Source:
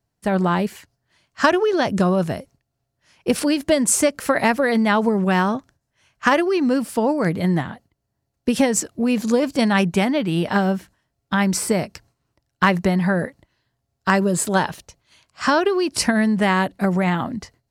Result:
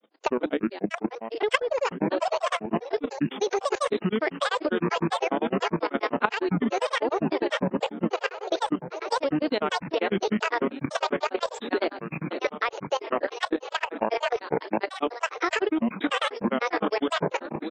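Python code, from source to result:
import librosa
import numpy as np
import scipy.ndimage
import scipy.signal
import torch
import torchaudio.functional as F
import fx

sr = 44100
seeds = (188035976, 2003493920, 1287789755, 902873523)

y = fx.reverse_delay_fb(x, sr, ms=330, feedback_pct=79, wet_db=-6.5)
y = fx.spec_box(y, sr, start_s=3.12, length_s=0.25, low_hz=620.0, high_hz=2600.0, gain_db=-10)
y = fx.brickwall_bandpass(y, sr, low_hz=260.0, high_hz=4900.0)
y = fx.granulator(y, sr, seeds[0], grain_ms=100.0, per_s=10.0, spray_ms=100.0, spread_st=12)
y = fx.level_steps(y, sr, step_db=14)
y = fx.low_shelf(y, sr, hz=470.0, db=5.0)
y = fx.band_squash(y, sr, depth_pct=70)
y = y * librosa.db_to_amplitude(2.0)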